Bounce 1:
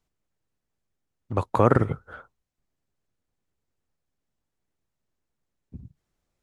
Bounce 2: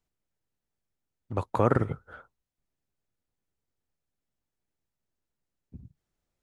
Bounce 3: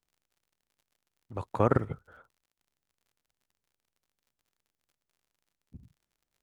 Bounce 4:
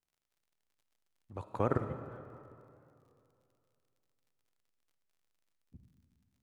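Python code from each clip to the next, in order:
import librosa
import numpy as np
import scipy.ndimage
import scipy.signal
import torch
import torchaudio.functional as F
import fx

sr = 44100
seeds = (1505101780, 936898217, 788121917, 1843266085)

y1 = fx.notch(x, sr, hz=1100.0, q=24.0)
y1 = y1 * librosa.db_to_amplitude(-4.5)
y2 = fx.level_steps(y1, sr, step_db=11)
y2 = fx.dmg_crackle(y2, sr, seeds[0], per_s=52.0, level_db=-57.0)
y3 = fx.vibrato(y2, sr, rate_hz=6.7, depth_cents=49.0)
y3 = fx.rev_freeverb(y3, sr, rt60_s=2.7, hf_ratio=0.75, predelay_ms=15, drr_db=9.0)
y3 = fx.record_warp(y3, sr, rpm=33.33, depth_cents=100.0)
y3 = y3 * librosa.db_to_amplitude(-6.5)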